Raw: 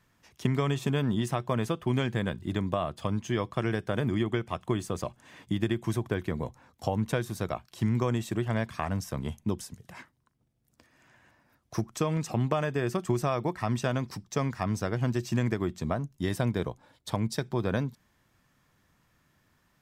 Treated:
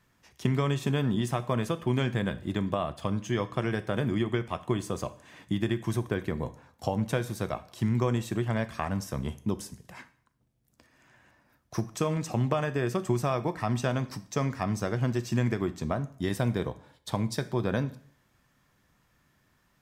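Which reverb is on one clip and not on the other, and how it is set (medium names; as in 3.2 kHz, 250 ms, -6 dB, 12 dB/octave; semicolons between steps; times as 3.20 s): plate-style reverb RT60 0.55 s, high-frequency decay 0.95×, DRR 11.5 dB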